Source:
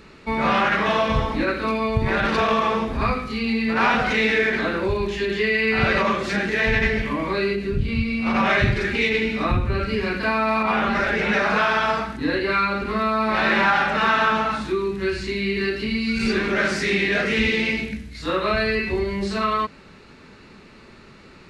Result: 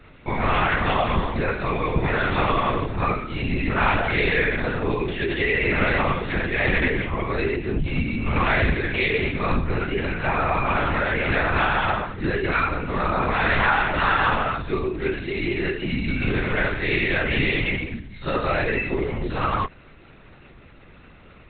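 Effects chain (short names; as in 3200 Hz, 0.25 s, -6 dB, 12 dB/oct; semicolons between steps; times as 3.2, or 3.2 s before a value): LPC vocoder at 8 kHz whisper; gain -1 dB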